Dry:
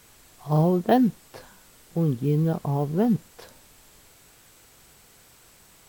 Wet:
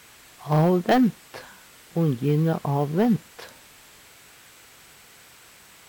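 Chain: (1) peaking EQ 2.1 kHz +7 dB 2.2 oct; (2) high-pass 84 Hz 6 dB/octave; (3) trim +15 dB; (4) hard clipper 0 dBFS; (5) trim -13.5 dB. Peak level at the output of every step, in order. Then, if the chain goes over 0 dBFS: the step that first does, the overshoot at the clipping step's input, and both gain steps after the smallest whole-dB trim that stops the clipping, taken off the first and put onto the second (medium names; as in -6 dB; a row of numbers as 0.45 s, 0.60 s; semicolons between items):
-5.5 dBFS, -6.5 dBFS, +8.5 dBFS, 0.0 dBFS, -13.5 dBFS; step 3, 8.5 dB; step 3 +6 dB, step 5 -4.5 dB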